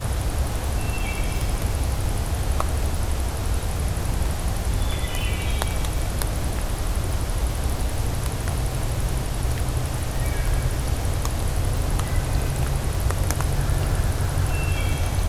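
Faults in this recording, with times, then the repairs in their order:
crackle 33 per s -26 dBFS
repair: de-click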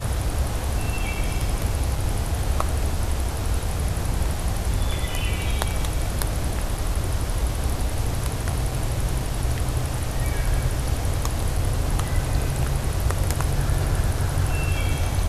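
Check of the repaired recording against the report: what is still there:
nothing left

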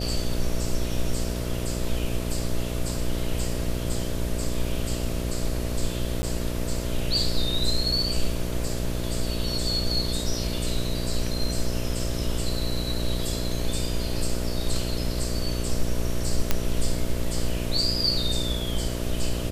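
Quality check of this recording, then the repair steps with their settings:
buzz 60 Hz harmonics 11 -30 dBFS
6.22–6.23 s: dropout 10 ms
16.51 s: pop -6 dBFS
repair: de-click; de-hum 60 Hz, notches 11; interpolate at 6.22 s, 10 ms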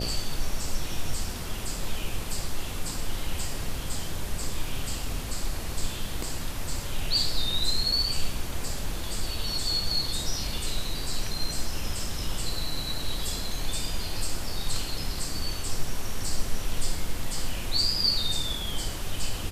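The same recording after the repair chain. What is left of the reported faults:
nothing left

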